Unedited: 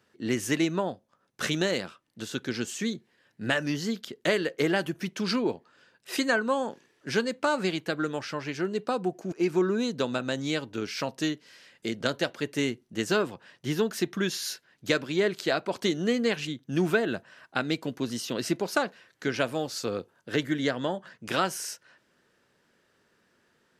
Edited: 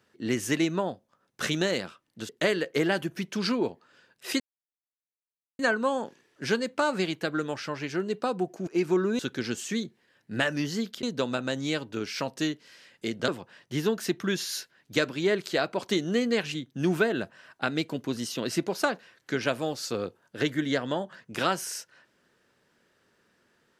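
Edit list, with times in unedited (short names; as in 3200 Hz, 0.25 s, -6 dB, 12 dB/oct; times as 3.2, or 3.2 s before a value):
2.29–4.13 move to 9.84
6.24 insert silence 1.19 s
12.09–13.21 cut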